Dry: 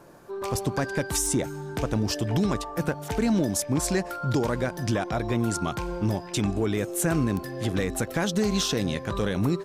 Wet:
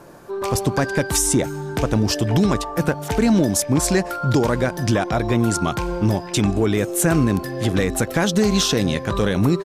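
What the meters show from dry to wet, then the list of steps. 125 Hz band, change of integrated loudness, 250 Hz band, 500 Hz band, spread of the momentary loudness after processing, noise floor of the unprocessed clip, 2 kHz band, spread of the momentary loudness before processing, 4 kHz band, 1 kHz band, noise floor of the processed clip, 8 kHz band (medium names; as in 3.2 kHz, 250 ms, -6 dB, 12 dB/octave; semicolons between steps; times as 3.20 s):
+7.0 dB, +7.0 dB, +7.0 dB, +7.0 dB, 5 LU, -39 dBFS, +7.0 dB, 5 LU, +7.0 dB, +7.0 dB, -32 dBFS, +7.0 dB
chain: resampled via 32 kHz; trim +7 dB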